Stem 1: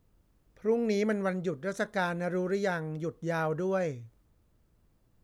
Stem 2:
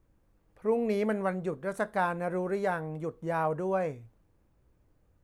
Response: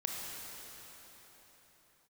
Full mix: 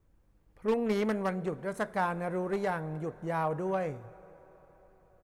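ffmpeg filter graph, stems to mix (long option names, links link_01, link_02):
-filter_complex "[0:a]aemphasis=mode=reproduction:type=bsi,bandreject=frequency=60:width_type=h:width=6,bandreject=frequency=120:width_type=h:width=6,bandreject=frequency=180:width_type=h:width=6,bandreject=frequency=240:width_type=h:width=6,aeval=exprs='0.133*(cos(1*acos(clip(val(0)/0.133,-1,1)))-cos(1*PI/2))+0.0531*(cos(3*acos(clip(val(0)/0.133,-1,1)))-cos(3*PI/2))+0.0299*(cos(5*acos(clip(val(0)/0.133,-1,1)))-cos(5*PI/2))':channel_layout=same,volume=-11dB[link_01];[1:a]adelay=1.1,volume=-2dB,asplit=2[link_02][link_03];[link_03]volume=-18dB[link_04];[2:a]atrim=start_sample=2205[link_05];[link_04][link_05]afir=irnorm=-1:irlink=0[link_06];[link_01][link_02][link_06]amix=inputs=3:normalize=0,lowshelf=frequency=190:gain=-3.5"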